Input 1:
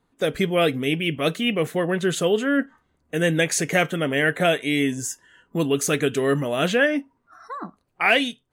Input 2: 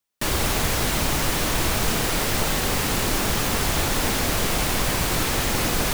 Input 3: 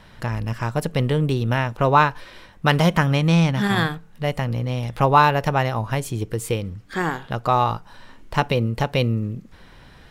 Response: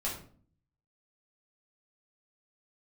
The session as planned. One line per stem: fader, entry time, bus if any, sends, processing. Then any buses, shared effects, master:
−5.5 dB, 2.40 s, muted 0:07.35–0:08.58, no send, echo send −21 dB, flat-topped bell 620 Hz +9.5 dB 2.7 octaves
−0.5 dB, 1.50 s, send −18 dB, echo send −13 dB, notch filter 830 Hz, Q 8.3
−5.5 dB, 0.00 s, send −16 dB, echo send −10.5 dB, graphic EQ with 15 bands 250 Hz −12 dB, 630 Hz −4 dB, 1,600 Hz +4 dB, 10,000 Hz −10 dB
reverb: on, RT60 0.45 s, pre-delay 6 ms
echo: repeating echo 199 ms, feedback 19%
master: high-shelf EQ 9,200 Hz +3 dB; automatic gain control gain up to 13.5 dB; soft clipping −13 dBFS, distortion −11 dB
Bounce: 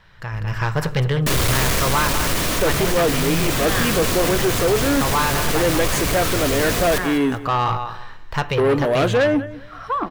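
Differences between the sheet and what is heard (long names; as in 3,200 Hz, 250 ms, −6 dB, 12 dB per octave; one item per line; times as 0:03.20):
stem 2: entry 1.50 s → 1.05 s
master: missing high-shelf EQ 9,200 Hz +3 dB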